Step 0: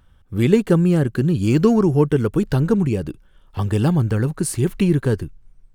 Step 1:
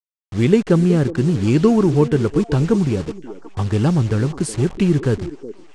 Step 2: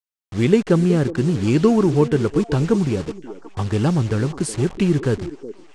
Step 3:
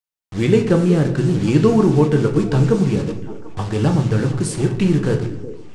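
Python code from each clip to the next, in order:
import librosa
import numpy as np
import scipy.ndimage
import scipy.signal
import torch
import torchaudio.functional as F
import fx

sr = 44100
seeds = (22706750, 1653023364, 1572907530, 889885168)

y1 = fx.delta_hold(x, sr, step_db=-31.0)
y1 = scipy.signal.sosfilt(scipy.signal.butter(4, 8500.0, 'lowpass', fs=sr, output='sos'), y1)
y1 = fx.echo_stepped(y1, sr, ms=369, hz=350.0, octaves=1.4, feedback_pct=70, wet_db=-10.0)
y1 = y1 * librosa.db_to_amplitude(1.0)
y2 = fx.low_shelf(y1, sr, hz=210.0, db=-3.5)
y3 = fx.room_shoebox(y2, sr, seeds[0], volume_m3=120.0, walls='mixed', distance_m=0.54)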